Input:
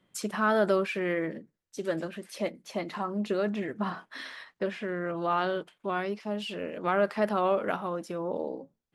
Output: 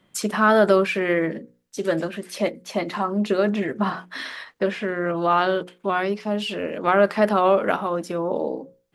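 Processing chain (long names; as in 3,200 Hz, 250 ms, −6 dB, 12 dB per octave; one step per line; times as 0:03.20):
mains-hum notches 60/120/180/240/300/360/420/480/540 Hz
level +8.5 dB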